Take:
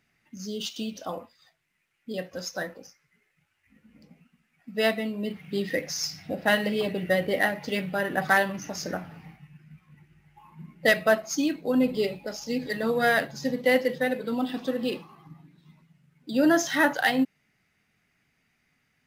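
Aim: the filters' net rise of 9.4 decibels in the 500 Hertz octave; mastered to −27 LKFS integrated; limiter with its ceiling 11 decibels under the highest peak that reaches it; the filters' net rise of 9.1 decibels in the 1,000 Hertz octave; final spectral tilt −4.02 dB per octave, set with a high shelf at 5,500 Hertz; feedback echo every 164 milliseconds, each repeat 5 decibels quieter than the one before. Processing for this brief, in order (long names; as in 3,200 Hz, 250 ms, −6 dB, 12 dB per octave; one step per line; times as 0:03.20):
parametric band 500 Hz +8.5 dB
parametric band 1,000 Hz +9 dB
high-shelf EQ 5,500 Hz +5 dB
brickwall limiter −13 dBFS
repeating echo 164 ms, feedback 56%, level −5 dB
level −4 dB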